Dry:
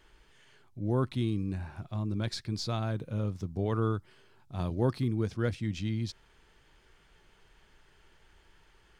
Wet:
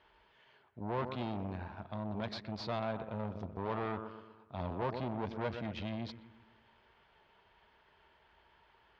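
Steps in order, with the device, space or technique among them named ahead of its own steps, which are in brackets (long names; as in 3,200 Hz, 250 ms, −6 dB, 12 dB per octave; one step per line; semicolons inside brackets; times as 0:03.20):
analogue delay pedal into a guitar amplifier (bucket-brigade delay 122 ms, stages 2,048, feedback 53%, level −12 dB; tube saturation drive 33 dB, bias 0.8; loudspeaker in its box 75–4,100 Hz, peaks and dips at 110 Hz −7 dB, 160 Hz −6 dB, 310 Hz −6 dB, 640 Hz +6 dB, 950 Hz +8 dB)
level +1.5 dB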